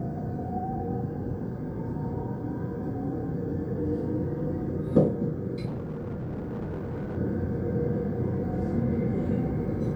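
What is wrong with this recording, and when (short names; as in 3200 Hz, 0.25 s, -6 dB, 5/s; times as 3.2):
5.65–7.18 clipped -30 dBFS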